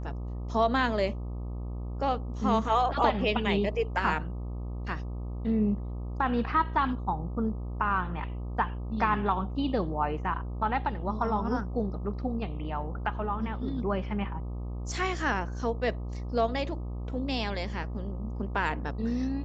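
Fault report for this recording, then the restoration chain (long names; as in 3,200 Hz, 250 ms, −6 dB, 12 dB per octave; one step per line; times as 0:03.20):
mains buzz 60 Hz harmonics 21 −35 dBFS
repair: hum removal 60 Hz, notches 21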